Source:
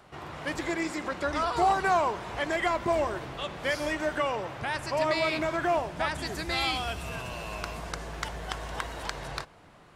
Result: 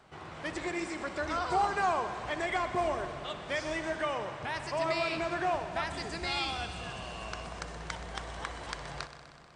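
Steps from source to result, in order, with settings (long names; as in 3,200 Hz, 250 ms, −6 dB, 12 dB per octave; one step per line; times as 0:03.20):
on a send: echo machine with several playback heads 65 ms, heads first and second, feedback 74%, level −16.5 dB
on the sum: wrong playback speed 24 fps film run at 25 fps
level −4.5 dB
MP2 128 kbit/s 32,000 Hz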